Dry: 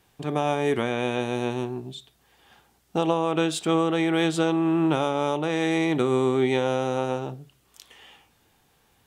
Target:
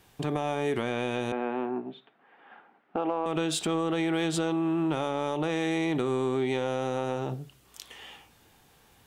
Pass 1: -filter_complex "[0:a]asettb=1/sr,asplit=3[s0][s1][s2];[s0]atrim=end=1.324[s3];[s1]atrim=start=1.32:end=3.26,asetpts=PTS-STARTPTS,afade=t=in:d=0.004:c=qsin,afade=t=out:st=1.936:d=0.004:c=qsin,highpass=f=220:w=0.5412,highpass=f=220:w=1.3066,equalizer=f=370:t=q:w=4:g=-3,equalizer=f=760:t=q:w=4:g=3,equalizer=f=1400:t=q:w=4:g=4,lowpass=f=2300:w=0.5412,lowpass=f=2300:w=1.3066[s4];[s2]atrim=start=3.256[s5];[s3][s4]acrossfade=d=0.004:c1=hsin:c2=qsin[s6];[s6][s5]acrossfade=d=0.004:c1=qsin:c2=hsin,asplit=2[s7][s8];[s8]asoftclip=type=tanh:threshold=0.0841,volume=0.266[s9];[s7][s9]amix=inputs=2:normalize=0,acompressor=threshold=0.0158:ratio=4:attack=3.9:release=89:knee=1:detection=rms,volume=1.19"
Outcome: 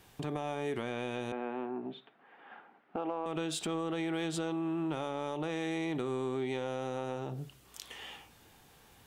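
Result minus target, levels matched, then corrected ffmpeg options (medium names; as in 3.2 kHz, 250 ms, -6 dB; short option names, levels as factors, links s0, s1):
compression: peak gain reduction +7 dB
-filter_complex "[0:a]asettb=1/sr,asplit=3[s0][s1][s2];[s0]atrim=end=1.324[s3];[s1]atrim=start=1.32:end=3.26,asetpts=PTS-STARTPTS,afade=t=in:d=0.004:c=qsin,afade=t=out:st=1.936:d=0.004:c=qsin,highpass=f=220:w=0.5412,highpass=f=220:w=1.3066,equalizer=f=370:t=q:w=4:g=-3,equalizer=f=760:t=q:w=4:g=3,equalizer=f=1400:t=q:w=4:g=4,lowpass=f=2300:w=0.5412,lowpass=f=2300:w=1.3066[s4];[s2]atrim=start=3.256[s5];[s3][s4]acrossfade=d=0.004:c1=hsin:c2=qsin[s6];[s6][s5]acrossfade=d=0.004:c1=qsin:c2=hsin,asplit=2[s7][s8];[s8]asoftclip=type=tanh:threshold=0.0841,volume=0.266[s9];[s7][s9]amix=inputs=2:normalize=0,acompressor=threshold=0.0447:ratio=4:attack=3.9:release=89:knee=1:detection=rms,volume=1.19"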